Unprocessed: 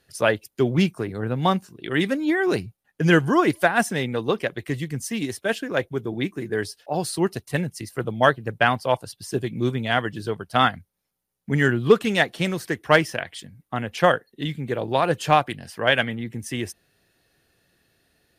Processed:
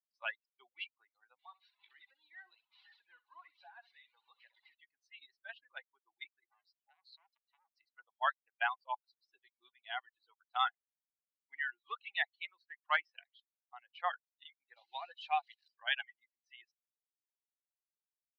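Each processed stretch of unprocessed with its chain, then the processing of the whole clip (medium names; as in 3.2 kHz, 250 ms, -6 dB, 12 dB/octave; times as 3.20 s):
1.39–4.75 s: one-bit delta coder 32 kbps, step -29 dBFS + compression 3:1, threshold -28 dBFS + feedback delay 64 ms, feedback 30%, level -5 dB
6.49–7.79 s: compression 5:1, threshold -26 dBFS + transformer saturation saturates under 2.2 kHz
14.76–15.68 s: zero-crossing glitches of -18 dBFS + dynamic bell 1.1 kHz, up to -5 dB, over -31 dBFS, Q 1.6
whole clip: expander on every frequency bin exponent 2; reverb removal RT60 0.55 s; Chebyshev band-pass 760–3700 Hz, order 4; trim -8.5 dB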